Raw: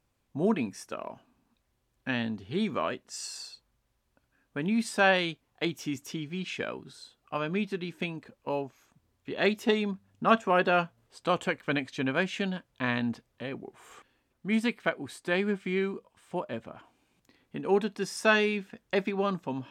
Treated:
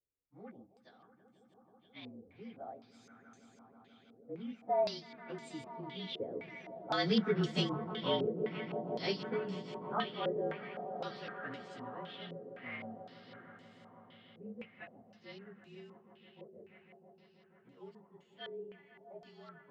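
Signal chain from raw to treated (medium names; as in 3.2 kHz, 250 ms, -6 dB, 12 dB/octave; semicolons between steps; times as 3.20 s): frequency axis rescaled in octaves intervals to 111%; Doppler pass-by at 7.44 s, 20 m/s, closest 5.7 m; distance through air 58 m; hum notches 50/100/150/200 Hz; echo with a slow build-up 162 ms, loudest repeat 5, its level -16.5 dB; step-sequenced low-pass 3.9 Hz 470–7300 Hz; trim +6 dB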